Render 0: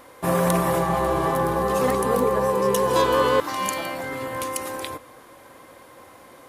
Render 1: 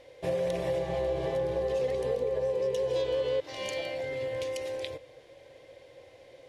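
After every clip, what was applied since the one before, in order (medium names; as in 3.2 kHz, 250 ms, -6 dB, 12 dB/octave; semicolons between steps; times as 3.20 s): FFT filter 140 Hz 0 dB, 210 Hz -15 dB, 530 Hz +5 dB, 1.2 kHz -20 dB, 2 kHz -2 dB, 3.3 kHz +1 dB, 5.6 kHz -3 dB, 14 kHz -24 dB; compression, threshold -22 dBFS, peak gain reduction 9.5 dB; trim -4.5 dB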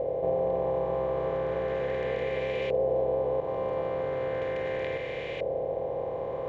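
spectral levelling over time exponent 0.2; LFO low-pass saw up 0.37 Hz 650–2500 Hz; trim -6 dB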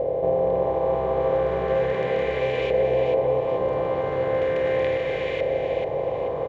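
feedback delay 436 ms, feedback 38%, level -6 dB; trim +5.5 dB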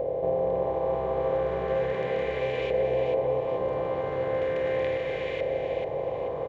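upward compressor, threshold -41 dBFS; trim -4.5 dB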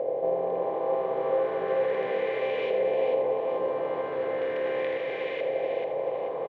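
band-pass 270–3800 Hz; delay 81 ms -8 dB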